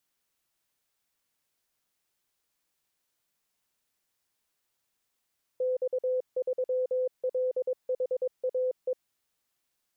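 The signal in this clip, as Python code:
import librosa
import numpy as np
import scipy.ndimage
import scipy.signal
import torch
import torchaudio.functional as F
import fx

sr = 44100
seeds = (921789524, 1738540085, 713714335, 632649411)

y = fx.morse(sr, text='X3LHAE', wpm=22, hz=509.0, level_db=-25.0)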